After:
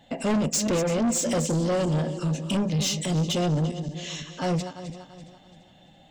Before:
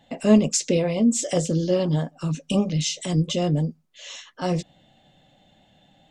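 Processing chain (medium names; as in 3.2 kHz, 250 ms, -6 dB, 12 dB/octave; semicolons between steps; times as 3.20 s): backward echo that repeats 169 ms, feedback 61%, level -12.5 dB; saturation -23 dBFS, distortion -7 dB; trim +2.5 dB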